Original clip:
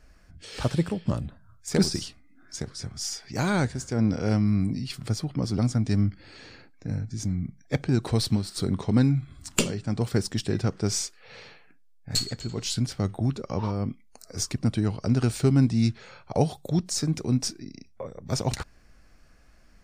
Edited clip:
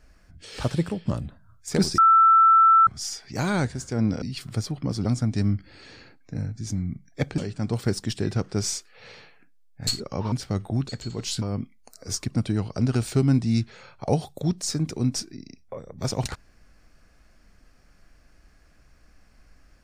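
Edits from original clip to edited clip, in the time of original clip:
1.98–2.87 s: bleep 1.33 kHz -12 dBFS
4.22–4.75 s: delete
7.91–9.66 s: delete
12.28–12.81 s: swap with 13.38–13.70 s

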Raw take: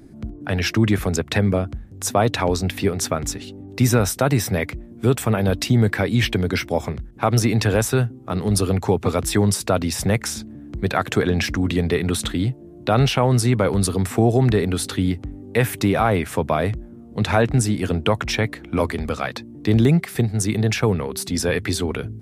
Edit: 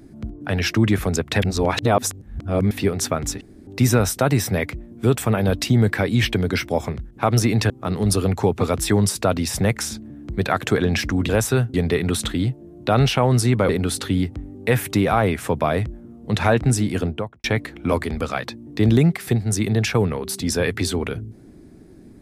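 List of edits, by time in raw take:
1.42–2.71 s: reverse
3.41–3.67 s: room tone
7.70–8.15 s: move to 11.74 s
13.69–14.57 s: delete
17.82–18.32 s: studio fade out

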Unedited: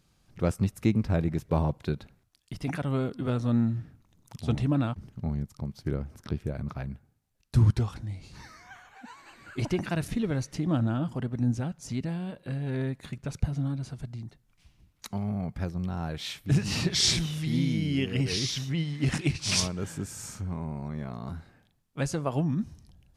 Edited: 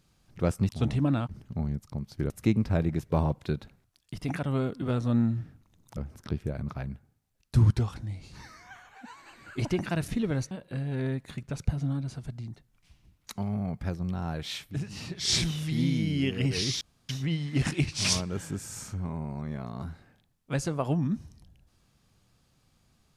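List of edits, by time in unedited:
4.36–5.97 s: move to 0.69 s
10.51–12.26 s: delete
16.37–17.12 s: dip -10.5 dB, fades 0.17 s
18.56 s: insert room tone 0.28 s

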